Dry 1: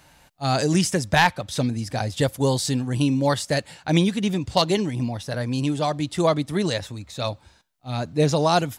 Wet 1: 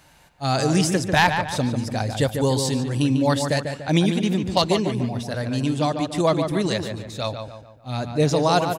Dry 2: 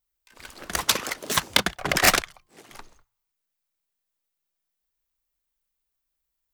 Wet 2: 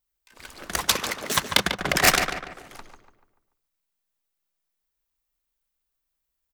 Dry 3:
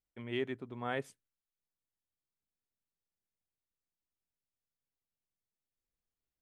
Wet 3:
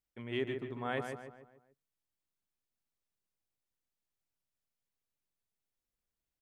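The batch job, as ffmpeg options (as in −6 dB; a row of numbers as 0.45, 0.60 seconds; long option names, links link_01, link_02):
-filter_complex "[0:a]asplit=2[link_01][link_02];[link_02]adelay=145,lowpass=frequency=2600:poles=1,volume=-6dB,asplit=2[link_03][link_04];[link_04]adelay=145,lowpass=frequency=2600:poles=1,volume=0.45,asplit=2[link_05][link_06];[link_06]adelay=145,lowpass=frequency=2600:poles=1,volume=0.45,asplit=2[link_07][link_08];[link_08]adelay=145,lowpass=frequency=2600:poles=1,volume=0.45,asplit=2[link_09][link_10];[link_10]adelay=145,lowpass=frequency=2600:poles=1,volume=0.45[link_11];[link_01][link_03][link_05][link_07][link_09][link_11]amix=inputs=6:normalize=0"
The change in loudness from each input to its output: +1.0, 0.0, 0.0 LU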